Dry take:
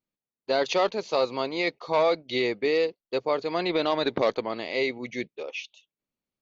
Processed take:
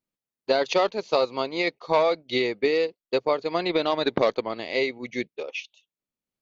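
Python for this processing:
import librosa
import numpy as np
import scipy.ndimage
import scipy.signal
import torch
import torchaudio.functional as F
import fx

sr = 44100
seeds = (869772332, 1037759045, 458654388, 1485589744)

y = fx.transient(x, sr, attack_db=5, sustain_db=-4)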